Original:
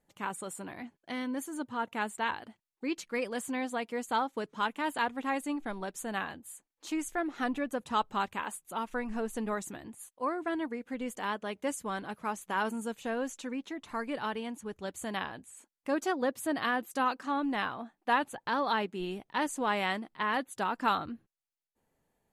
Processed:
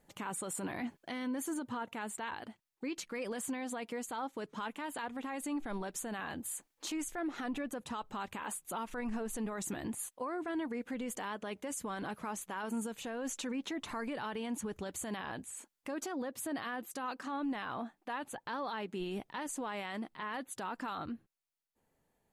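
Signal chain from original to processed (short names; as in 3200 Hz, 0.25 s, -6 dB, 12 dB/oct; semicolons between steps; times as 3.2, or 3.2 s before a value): vocal rider 0.5 s; limiter -33.5 dBFS, peak gain reduction 17 dB; gain +3 dB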